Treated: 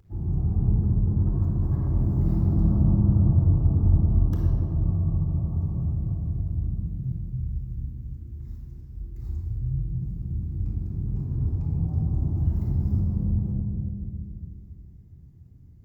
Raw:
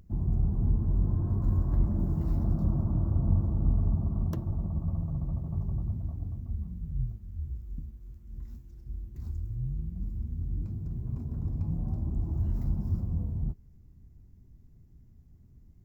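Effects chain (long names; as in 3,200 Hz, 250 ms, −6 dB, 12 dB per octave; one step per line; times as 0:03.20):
high-pass filter 62 Hz 6 dB per octave
0:00.76–0:01.70: compressor whose output falls as the input rises −31 dBFS, ratio −0.5
bucket-brigade delay 283 ms, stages 1,024, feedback 46%, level −3.5 dB
rectangular room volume 3,200 cubic metres, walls mixed, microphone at 4 metres
level −3.5 dB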